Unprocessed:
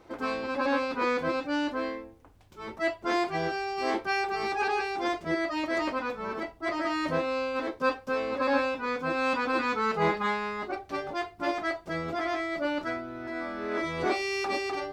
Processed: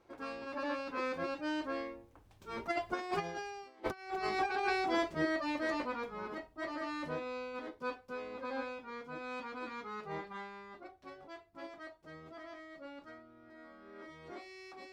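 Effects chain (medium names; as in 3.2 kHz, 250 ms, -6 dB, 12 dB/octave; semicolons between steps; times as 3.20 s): Doppler pass-by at 3.71 s, 14 m/s, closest 2.8 m; compressor with a negative ratio -43 dBFS, ratio -0.5; trim +8.5 dB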